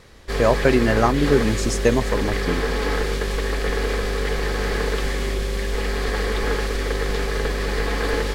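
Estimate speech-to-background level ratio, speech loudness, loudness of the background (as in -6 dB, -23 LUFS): 3.5 dB, -21.0 LUFS, -24.5 LUFS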